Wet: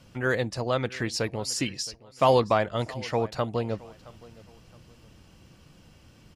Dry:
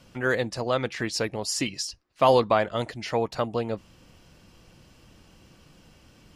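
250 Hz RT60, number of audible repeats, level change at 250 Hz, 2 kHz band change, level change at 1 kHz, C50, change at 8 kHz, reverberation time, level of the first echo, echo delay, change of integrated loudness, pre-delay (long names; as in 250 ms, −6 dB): no reverb audible, 2, −0.5 dB, −1.5 dB, −1.5 dB, no reverb audible, −1.5 dB, no reverb audible, −21.0 dB, 669 ms, −1.0 dB, no reverb audible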